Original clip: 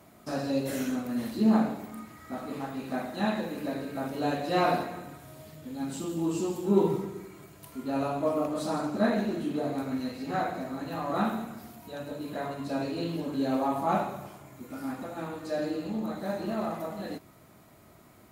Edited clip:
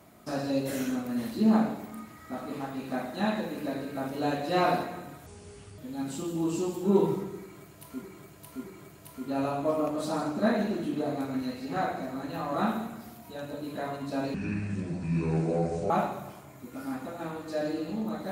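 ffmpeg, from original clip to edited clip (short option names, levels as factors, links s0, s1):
-filter_complex "[0:a]asplit=7[s0][s1][s2][s3][s4][s5][s6];[s0]atrim=end=5.264[s7];[s1]atrim=start=5.26:end=5.6,asetpts=PTS-STARTPTS,asetrate=28665,aresample=44100[s8];[s2]atrim=start=5.596:end=7.842[s9];[s3]atrim=start=7.218:end=7.842[s10];[s4]atrim=start=7.218:end=12.924[s11];[s5]atrim=start=12.92:end=13.87,asetpts=PTS-STARTPTS,asetrate=26901,aresample=44100,atrim=end_sample=68680,asetpts=PTS-STARTPTS[s12];[s6]atrim=start=13.866[s13];[s7][s8]acrossfade=d=0.004:c1=hsin:c2=hsin[s14];[s14][s9]acrossfade=d=0.004:c1=hsin:c2=hsin[s15];[s15][s10]acrossfade=d=0.004:c1=hsin:c2=hsin[s16];[s16][s11]acrossfade=d=0.004:c1=hsin:c2=hsin[s17];[s17][s12]acrossfade=d=0.004:c1=hsin:c2=hsin[s18];[s18][s13]acrossfade=d=0.004:c1=hsin:c2=hsin"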